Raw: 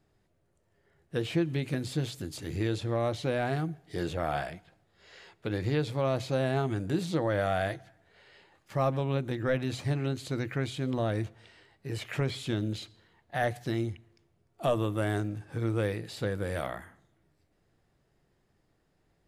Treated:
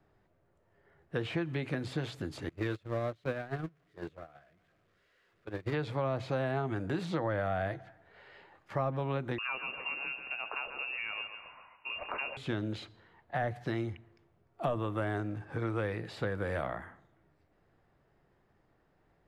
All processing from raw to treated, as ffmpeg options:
ffmpeg -i in.wav -filter_complex "[0:a]asettb=1/sr,asplit=3[link_01][link_02][link_03];[link_01]atrim=end=2.494[link_04];[link_02]atrim=start=2.49:end=5.74,asetpts=PTS-STARTPTS,afade=type=in:duration=0.004:curve=qsin,afade=type=out:start_time=3.246:duration=0.004:curve=qsin,aeval=exprs='val(0)+0.5*0.0188*sgn(val(0))':channel_layout=same,equalizer=frequency=860:width_type=o:width=0.36:gain=-13.5,agate=range=-32dB:threshold=-28dB:ratio=16:release=100:detection=peak[link_05];[link_03]atrim=start=5.736[link_06];[link_04][link_05]acrossfade=duration=0.004:curve1=hsin:curve2=qsin[link_07];[link_07][link_06]acrossfade=duration=0.004:curve1=qsin:curve2=hsin,asettb=1/sr,asplit=3[link_08][link_09][link_10];[link_08]atrim=end=9.384[link_11];[link_09]atrim=start=9.38:end=12.37,asetpts=PTS-STARTPTS,afade=type=in:duration=0.004:curve=qsin,afade=type=out:start_time=2.986:duration=0.004:curve=qsin,lowpass=frequency=2500:width_type=q:width=0.5098,lowpass=frequency=2500:width_type=q:width=0.6013,lowpass=frequency=2500:width_type=q:width=0.9,lowpass=frequency=2500:width_type=q:width=2.563,afreqshift=-2900,asplit=2[link_12][link_13];[link_13]adelay=136,lowpass=frequency=1700:poles=1,volume=-7.5dB,asplit=2[link_14][link_15];[link_15]adelay=136,lowpass=frequency=1700:poles=1,volume=0.49,asplit=2[link_16][link_17];[link_17]adelay=136,lowpass=frequency=1700:poles=1,volume=0.49,asplit=2[link_18][link_19];[link_19]adelay=136,lowpass=frequency=1700:poles=1,volume=0.49,asplit=2[link_20][link_21];[link_21]adelay=136,lowpass=frequency=1700:poles=1,volume=0.49,asplit=2[link_22][link_23];[link_23]adelay=136,lowpass=frequency=1700:poles=1,volume=0.49[link_24];[link_12][link_14][link_16][link_18][link_20][link_22][link_24]amix=inputs=7:normalize=0,atrim=end_sample=131859[link_25];[link_10]atrim=start=12.366[link_26];[link_11][link_25]acrossfade=duration=0.004:curve1=hsin:curve2=qsin[link_27];[link_27][link_26]acrossfade=duration=0.004:curve1=qsin:curve2=hsin,lowpass=frequency=2000:poles=1,equalizer=frequency=1200:width=0.5:gain=6.5,acrossover=split=260|740[link_28][link_29][link_30];[link_28]acompressor=threshold=-36dB:ratio=4[link_31];[link_29]acompressor=threshold=-37dB:ratio=4[link_32];[link_30]acompressor=threshold=-37dB:ratio=4[link_33];[link_31][link_32][link_33]amix=inputs=3:normalize=0" out.wav

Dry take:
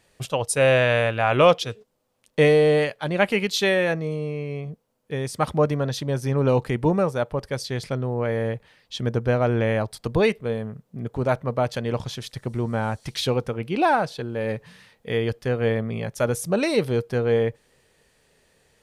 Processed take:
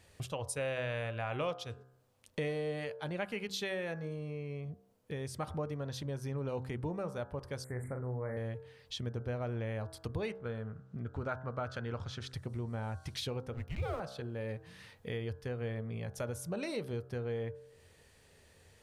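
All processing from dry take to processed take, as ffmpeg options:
ffmpeg -i in.wav -filter_complex "[0:a]asettb=1/sr,asplit=3[link_01][link_02][link_03];[link_01]atrim=end=7.644[link_04];[link_02]atrim=start=7.64:end=8.37,asetpts=PTS-STARTPTS,afade=type=in:duration=0.004:curve=qsin,afade=type=out:start_time=0.726:duration=0.004:curve=qsin,asuperstop=centerf=4100:order=20:qfactor=0.77,bandreject=frequency=50:width_type=h:width=6,bandreject=frequency=100:width_type=h:width=6,bandreject=frequency=150:width_type=h:width=6,bandreject=frequency=200:width_type=h:width=6,bandreject=frequency=250:width_type=h:width=6,bandreject=frequency=300:width_type=h:width=6,bandreject=frequency=350:width_type=h:width=6,bandreject=frequency=400:width_type=h:width=6,asplit=2[link_05][link_06];[link_06]adelay=40,volume=-6.5dB[link_07];[link_05][link_07]amix=inputs=2:normalize=0,atrim=end_sample=32193[link_08];[link_03]atrim=start=8.366[link_09];[link_04][link_08]acrossfade=duration=0.004:curve1=hsin:curve2=qsin[link_10];[link_10][link_09]acrossfade=duration=0.004:curve1=qsin:curve2=hsin,asettb=1/sr,asplit=3[link_11][link_12][link_13];[link_11]atrim=end=10.314[link_14];[link_12]atrim=start=10.31:end=12.34,asetpts=PTS-STARTPTS,afade=type=in:duration=0.004:curve=qsin,afade=type=out:start_time=2.026:duration=0.004:curve=qsin,lowpass=6800,equalizer=frequency=1400:width=3.3:gain=12[link_15];[link_13]atrim=start=12.336[link_16];[link_14][link_15]acrossfade=duration=0.004:curve1=hsin:curve2=qsin[link_17];[link_17][link_16]acrossfade=duration=0.004:curve1=qsin:curve2=hsin,asettb=1/sr,asplit=3[link_18][link_19][link_20];[link_18]atrim=end=13.534[link_21];[link_19]atrim=start=13.53:end=14,asetpts=PTS-STARTPTS,afade=type=in:duration=0.004:curve=qsin,afade=type=out:start_time=0.466:duration=0.004:curve=qsin,aeval=exprs='sgn(val(0))*max(abs(val(0))-0.0119,0)':channel_layout=same,afreqshift=-220[link_22];[link_20]atrim=start=13.996[link_23];[link_21][link_22]acrossfade=duration=0.004:curve1=hsin:curve2=qsin[link_24];[link_24][link_23]acrossfade=duration=0.004:curve1=qsin:curve2=hsin,equalizer=frequency=87:width=2.9:gain=14.5,bandreject=frequency=64.53:width_type=h:width=4,bandreject=frequency=129.06:width_type=h:width=4,bandreject=frequency=193.59:width_type=h:width=4,bandreject=frequency=258.12:width_type=h:width=4,bandreject=frequency=322.65:width_type=h:width=4,bandreject=frequency=387.18:width_type=h:width=4,bandreject=frequency=451.71:width_type=h:width=4,bandreject=frequency=516.24:width_type=h:width=4,bandreject=frequency=580.77:width_type=h:width=4,bandreject=frequency=645.3:width_type=h:width=4,bandreject=frequency=709.83:width_type=h:width=4,bandreject=frequency=774.36:width_type=h:width=4,bandreject=frequency=838.89:width_type=h:width=4,bandreject=frequency=903.42:width_type=h:width=4,bandreject=frequency=967.95:width_type=h:width=4,bandreject=frequency=1032.48:width_type=h:width=4,bandreject=frequency=1097.01:width_type=h:width=4,bandreject=frequency=1161.54:width_type=h:width=4,bandreject=frequency=1226.07:width_type=h:width=4,bandreject=frequency=1290.6:width_type=h:width=4,bandreject=frequency=1355.13:width_type=h:width=4,bandreject=frequency=1419.66:width_type=h:width=4,bandreject=frequency=1484.19:width_type=h:width=4,bandreject=frequency=1548.72:width_type=h:width=4,bandreject=frequency=1613.25:width_type=h:width=4,bandreject=frequency=1677.78:width_type=h:width=4,acompressor=threshold=-41dB:ratio=2.5,volume=-1.5dB" out.wav

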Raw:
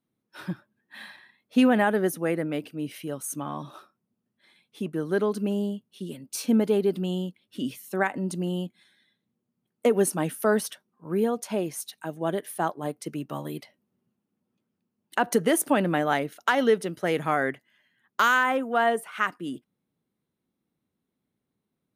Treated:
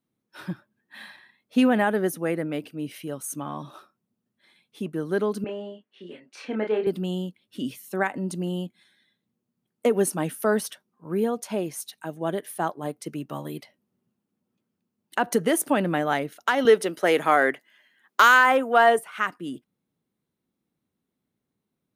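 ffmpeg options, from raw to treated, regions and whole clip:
ffmpeg -i in.wav -filter_complex "[0:a]asettb=1/sr,asplit=3[link_01][link_02][link_03];[link_01]atrim=end=5.444[link_04];[link_02]atrim=start=5.44:end=6.87,asetpts=PTS-STARTPTS,afade=type=in:duration=0.004:curve=qsin,afade=type=out:start_time=1.426:duration=0.004:curve=qsin,highpass=420,lowpass=2400,equalizer=frequency=1900:width_type=o:width=0.78:gain=8.5,asplit=2[link_05][link_06];[link_06]adelay=28,volume=-4dB[link_07];[link_05][link_07]amix=inputs=2:normalize=0,atrim=end_sample=63063[link_08];[link_03]atrim=start=6.866[link_09];[link_04][link_08]acrossfade=duration=0.004:curve1=hsin:curve2=qsin[link_10];[link_10][link_09]acrossfade=duration=0.004:curve1=qsin:curve2=hsin,asettb=1/sr,asplit=3[link_11][link_12][link_13];[link_11]atrim=end=16.654[link_14];[link_12]atrim=start=16.65:end=18.99,asetpts=PTS-STARTPTS,afade=type=in:duration=0.004:curve=qsin,afade=type=out:start_time=2.336:duration=0.004:curve=qsin,highpass=320,acontrast=61[link_15];[link_13]atrim=start=18.986[link_16];[link_14][link_15]acrossfade=duration=0.004:curve1=hsin:curve2=qsin[link_17];[link_17][link_16]acrossfade=duration=0.004:curve1=qsin:curve2=hsin" out.wav

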